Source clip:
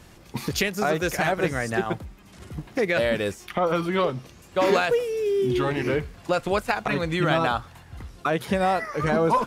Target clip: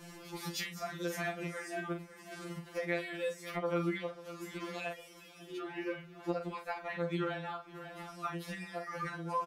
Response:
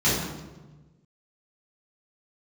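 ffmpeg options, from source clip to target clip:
-filter_complex "[0:a]lowshelf=frequency=140:gain=-10.5,asplit=2[link_01][link_02];[link_02]adelay=41,volume=-8dB[link_03];[link_01][link_03]amix=inputs=2:normalize=0,aecho=1:1:543:0.075,acompressor=threshold=-40dB:ratio=3,asettb=1/sr,asplit=3[link_04][link_05][link_06];[link_04]atrim=end=5.584[link_07];[link_05]atrim=start=5.58:end=7.97,asetpts=PTS-STARTPTS,afade=type=in:duration=0.004:curve=qsin,afade=type=out:start_time=2.386:duration=0.004:curve=qsin,equalizer=frequency=8700:width_type=o:width=1.7:gain=-9.5[link_08];[link_06]atrim=start=7.966[link_09];[link_07][link_08]acrossfade=duration=0.004:curve1=hsin:curve2=qsin[link_10];[link_10][link_09]acrossfade=duration=0.004:curve1=qsin:curve2=hsin,afftfilt=real='re*2.83*eq(mod(b,8),0)':imag='im*2.83*eq(mod(b,8),0)':win_size=2048:overlap=0.75,volume=2dB"

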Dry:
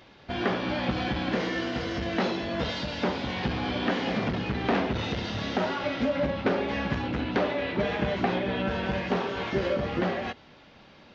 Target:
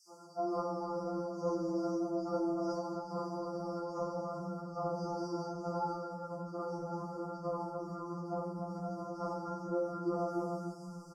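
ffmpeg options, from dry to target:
ffmpeg -i in.wav -filter_complex "[0:a]bandreject=frequency=60:width_type=h:width=6,bandreject=frequency=120:width_type=h:width=6,bandreject=frequency=180:width_type=h:width=6,bandreject=frequency=240:width_type=h:width=6,bandreject=frequency=300:width_type=h:width=6,bandreject=frequency=360:width_type=h:width=6,bandreject=frequency=420:width_type=h:width=6,bandreject=frequency=480:width_type=h:width=6,asplit=2[link_01][link_02];[link_02]adelay=297,lowpass=frequency=2400:poles=1,volume=-11.5dB,asplit=2[link_03][link_04];[link_04]adelay=297,lowpass=frequency=2400:poles=1,volume=0.18[link_05];[link_03][link_05]amix=inputs=2:normalize=0[link_06];[link_01][link_06]amix=inputs=2:normalize=0,acontrast=77,acrusher=bits=7:mix=0:aa=0.000001,afftfilt=real='re*(1-between(b*sr/4096,1500,4500))':imag='im*(1-between(b*sr/4096,1500,4500))':win_size=4096:overlap=0.75,areverse,acompressor=threshold=-28dB:ratio=12,areverse,lowpass=6200,acrossover=split=170|3500[link_07][link_08][link_09];[link_08]adelay=90[link_10];[link_07]adelay=550[link_11];[link_11][link_10][link_09]amix=inputs=3:normalize=0,afftfilt=real='re*2.83*eq(mod(b,8),0)':imag='im*2.83*eq(mod(b,8),0)':win_size=2048:overlap=0.75,volume=-2dB" out.wav

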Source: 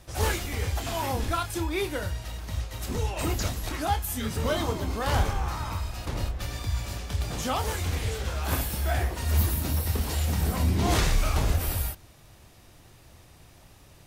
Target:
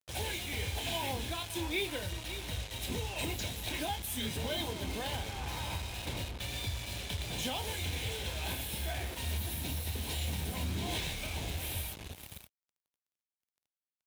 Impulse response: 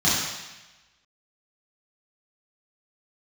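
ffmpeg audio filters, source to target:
-af "aecho=1:1:555:0.188,alimiter=limit=-22dB:level=0:latency=1:release=345,superequalizer=10b=0.282:12b=2.24:13b=2.82:16b=1.41,acrusher=bits=5:mix=0:aa=0.5,highpass=64,volume=-4.5dB"

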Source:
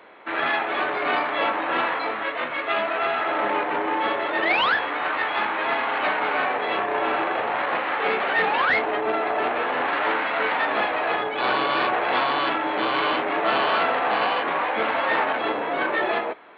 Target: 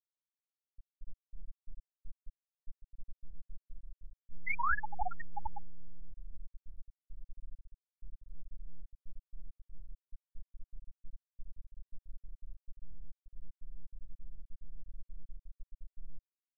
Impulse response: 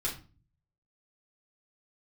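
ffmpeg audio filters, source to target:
-filter_complex "[0:a]asettb=1/sr,asplit=3[link_01][link_02][link_03];[link_01]atrim=end=8.914[link_04];[link_02]atrim=start=8.91:end=10.24,asetpts=PTS-STARTPTS,afade=type=in:duration=0.004:curve=qsin,afade=type=out:start_time=1.326:duration=0.004:curve=qsin,equalizer=frequency=790:width_type=o:width=0.77:gain=-7.5[link_05];[link_03]atrim=start=10.236[link_06];[link_04][link_05]acrossfade=duration=0.004:curve1=hsin:curve2=qsin[link_07];[link_07][link_06]acrossfade=duration=0.004:curve1=qsin:curve2=hsin,aeval=exprs='val(0)+0.0355*sin(2*PI*830*n/s)':channel_layout=same,alimiter=limit=-17dB:level=0:latency=1:release=316,aeval=exprs='sgn(val(0))*max(abs(val(0))-0.00596,0)':channel_layout=same,highshelf=frequency=2800:gain=-4.5,asplit=3[link_08][link_09][link_10];[link_08]afade=type=out:start_time=4.3:duration=0.02[link_11];[link_09]acontrast=53,afade=type=in:start_time=4.3:duration=0.02,afade=type=out:start_time=5.58:duration=0.02[link_12];[link_10]afade=type=in:start_time=5.58:duration=0.02[link_13];[link_11][link_12][link_13]amix=inputs=3:normalize=0,highpass=frequency=190:poles=1,asplit=6[link_14][link_15][link_16][link_17][link_18][link_19];[link_15]adelay=407,afreqshift=-100,volume=-4.5dB[link_20];[link_16]adelay=814,afreqshift=-200,volume=-13.4dB[link_21];[link_17]adelay=1221,afreqshift=-300,volume=-22.2dB[link_22];[link_18]adelay=1628,afreqshift=-400,volume=-31.1dB[link_23];[link_19]adelay=2035,afreqshift=-500,volume=-40dB[link_24];[link_14][link_20][link_21][link_22][link_23][link_24]amix=inputs=6:normalize=0,flanger=delay=6.7:depth=3.5:regen=90:speed=0.2:shape=triangular,acrusher=bits=3:dc=4:mix=0:aa=0.000001,afftfilt=real='re*gte(hypot(re,im),0.2)':imag='im*gte(hypot(re,im),0.2)':win_size=1024:overlap=0.75,volume=7dB"

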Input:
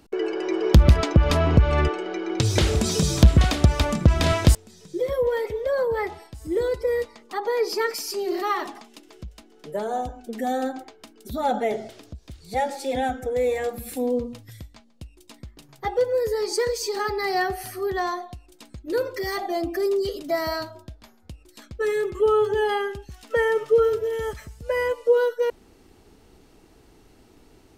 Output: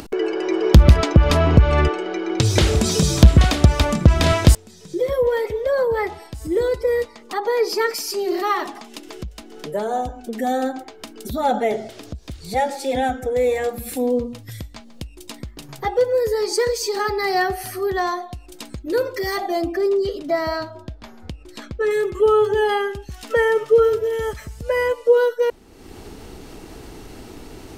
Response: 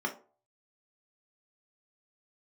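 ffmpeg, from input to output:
-filter_complex "[0:a]asettb=1/sr,asplit=3[link_01][link_02][link_03];[link_01]atrim=end=19.724[link_04];[link_02]atrim=start=19.72:end=21.91,asetpts=PTS-STARTPTS,afade=type=in:duration=0.004:curve=qsin,afade=type=out:start_time=2.186:duration=0.004:curve=qsin,aemphasis=mode=reproduction:type=50kf[link_05];[link_03]atrim=start=21.906[link_06];[link_04][link_05]acrossfade=duration=0.004:curve1=hsin:curve2=qsin[link_07];[link_07][link_06]acrossfade=duration=0.004:curve1=qsin:curve2=hsin,acompressor=mode=upward:threshold=-30dB:ratio=2.5,volume=4dB"

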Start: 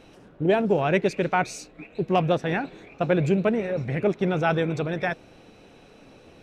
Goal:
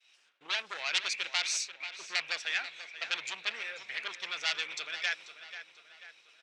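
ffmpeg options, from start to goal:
ffmpeg -i in.wav -filter_complex "[0:a]agate=range=-33dB:threshold=-43dB:ratio=3:detection=peak,aeval=exprs='0.316*sin(PI/2*2.51*val(0)/0.316)':channel_layout=same,asetrate=42845,aresample=44100,atempo=1.0293,asuperpass=centerf=4400:order=4:qfactor=0.75,asplit=2[link_01][link_02];[link_02]adelay=488,lowpass=frequency=4000:poles=1,volume=-11.5dB,asplit=2[link_03][link_04];[link_04]adelay=488,lowpass=frequency=4000:poles=1,volume=0.52,asplit=2[link_05][link_06];[link_06]adelay=488,lowpass=frequency=4000:poles=1,volume=0.52,asplit=2[link_07][link_08];[link_08]adelay=488,lowpass=frequency=4000:poles=1,volume=0.52,asplit=2[link_09][link_10];[link_10]adelay=488,lowpass=frequency=4000:poles=1,volume=0.52,asplit=2[link_11][link_12];[link_12]adelay=488,lowpass=frequency=4000:poles=1,volume=0.52[link_13];[link_01][link_03][link_05][link_07][link_09][link_11][link_13]amix=inputs=7:normalize=0,volume=-5dB" out.wav

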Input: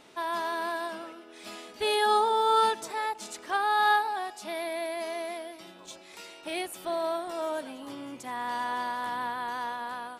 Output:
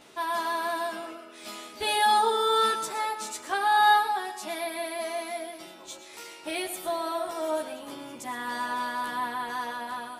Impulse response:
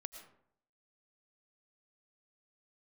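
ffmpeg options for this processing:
-filter_complex "[0:a]asplit=2[link_01][link_02];[1:a]atrim=start_sample=2205,highshelf=frequency=6400:gain=10,adelay=13[link_03];[link_02][link_03]afir=irnorm=-1:irlink=0,volume=1.5dB[link_04];[link_01][link_04]amix=inputs=2:normalize=0"

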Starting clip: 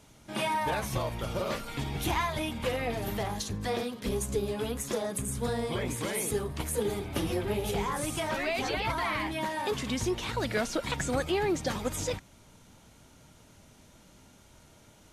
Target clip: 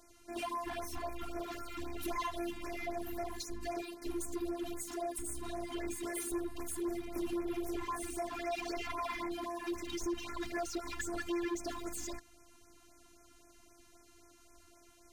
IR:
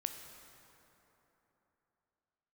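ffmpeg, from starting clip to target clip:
-af "bandreject=frequency=3500:width=12,afftfilt=real='hypot(re,im)*cos(PI*b)':imag='0':win_size=512:overlap=0.75,volume=32dB,asoftclip=hard,volume=-32dB,afftfilt=real='re*(1-between(b*sr/1024,460*pow(3800/460,0.5+0.5*sin(2*PI*3.8*pts/sr))/1.41,460*pow(3800/460,0.5+0.5*sin(2*PI*3.8*pts/sr))*1.41))':imag='im*(1-between(b*sr/1024,460*pow(3800/460,0.5+0.5*sin(2*PI*3.8*pts/sr))/1.41,460*pow(3800/460,0.5+0.5*sin(2*PI*3.8*pts/sr))*1.41))':win_size=1024:overlap=0.75"

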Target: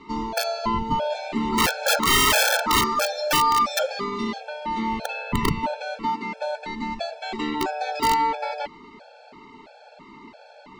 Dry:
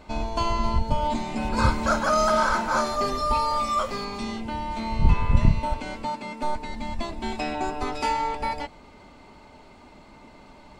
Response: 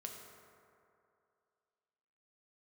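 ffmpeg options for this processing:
-filter_complex "[0:a]acrossover=split=170 6200:gain=0.126 1 0.0708[link_01][link_02][link_03];[link_01][link_02][link_03]amix=inputs=3:normalize=0,aeval=exprs='(mod(7.08*val(0)+1,2)-1)/7.08':channel_layout=same,afftfilt=real='re*gt(sin(2*PI*1.5*pts/sr)*(1-2*mod(floor(b*sr/1024/450),2)),0)':imag='im*gt(sin(2*PI*1.5*pts/sr)*(1-2*mod(floor(b*sr/1024/450),2)),0)':win_size=1024:overlap=0.75,volume=7dB"

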